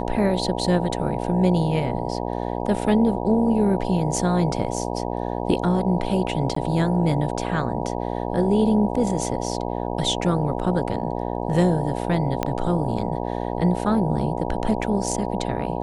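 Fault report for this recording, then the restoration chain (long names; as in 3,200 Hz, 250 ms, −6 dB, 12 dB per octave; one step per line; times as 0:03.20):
mains buzz 60 Hz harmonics 16 −27 dBFS
0:06.55–0:06.56: drop-out 14 ms
0:12.43: click −9 dBFS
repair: click removal
hum removal 60 Hz, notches 16
repair the gap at 0:06.55, 14 ms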